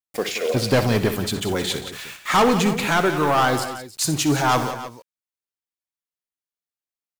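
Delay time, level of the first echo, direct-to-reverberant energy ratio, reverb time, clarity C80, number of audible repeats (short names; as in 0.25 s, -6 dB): 62 ms, -13.0 dB, none, none, none, 3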